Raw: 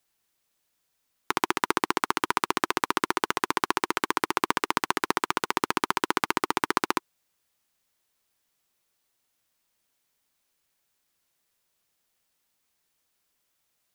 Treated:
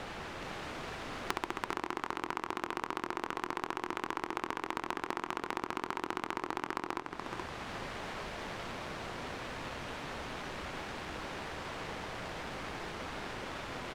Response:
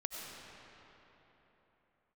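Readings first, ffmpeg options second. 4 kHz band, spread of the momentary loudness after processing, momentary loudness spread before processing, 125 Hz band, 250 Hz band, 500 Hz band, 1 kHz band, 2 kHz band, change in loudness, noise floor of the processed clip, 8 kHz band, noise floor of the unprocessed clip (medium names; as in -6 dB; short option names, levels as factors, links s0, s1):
-9.5 dB, 4 LU, 1 LU, 0.0 dB, -7.5 dB, -6.5 dB, -9.0 dB, -8.5 dB, -12.5 dB, -49 dBFS, -13.0 dB, -76 dBFS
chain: -filter_complex "[0:a]aeval=exprs='val(0)+0.5*0.0355*sgn(val(0))':c=same,acompressor=threshold=0.0178:ratio=20,aecho=1:1:425|850|1275|1700|2125:0.562|0.208|0.077|0.0285|0.0105,asplit=2[s0][s1];[1:a]atrim=start_sample=2205,adelay=117[s2];[s1][s2]afir=irnorm=-1:irlink=0,volume=0.119[s3];[s0][s3]amix=inputs=2:normalize=0,adynamicsmooth=sensitivity=2.5:basefreq=1400,volume=1.78"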